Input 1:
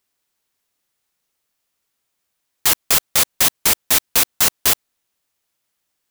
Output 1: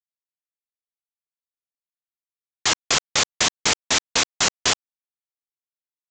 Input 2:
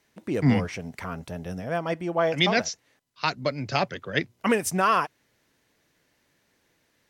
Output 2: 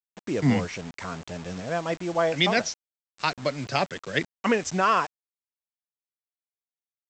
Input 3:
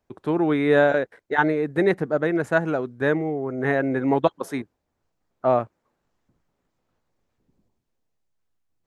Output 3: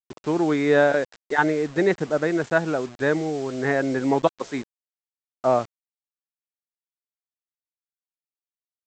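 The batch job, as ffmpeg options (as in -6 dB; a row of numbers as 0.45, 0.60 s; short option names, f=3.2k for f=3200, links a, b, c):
-af "lowshelf=f=66:g=-9.5,aresample=16000,acrusher=bits=6:mix=0:aa=0.000001,aresample=44100"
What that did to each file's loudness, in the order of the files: -5.5, -0.5, 0.0 LU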